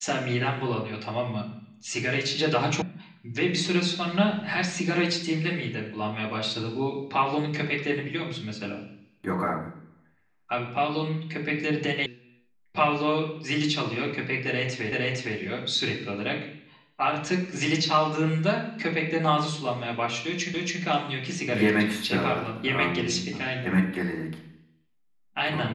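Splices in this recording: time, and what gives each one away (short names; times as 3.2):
2.82 sound cut off
12.06 sound cut off
14.92 repeat of the last 0.46 s
20.54 repeat of the last 0.28 s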